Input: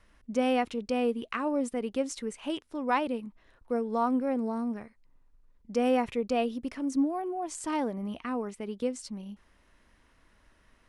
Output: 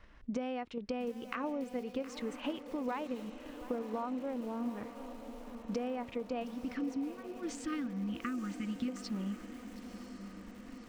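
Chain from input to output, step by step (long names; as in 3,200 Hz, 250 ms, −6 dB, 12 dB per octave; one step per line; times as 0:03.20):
in parallel at +1.5 dB: output level in coarse steps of 15 dB
on the sum: gain on a spectral selection 0:06.44–0:08.89, 360–1,100 Hz −28 dB
downward compressor 12 to 1, threshold −35 dBFS, peak gain reduction 18 dB
Gaussian smoothing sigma 1.5 samples
feedback delay with all-pass diffusion 1,017 ms, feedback 69%, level −12 dB
feedback echo at a low word length 718 ms, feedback 35%, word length 8 bits, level −14 dB
level +1 dB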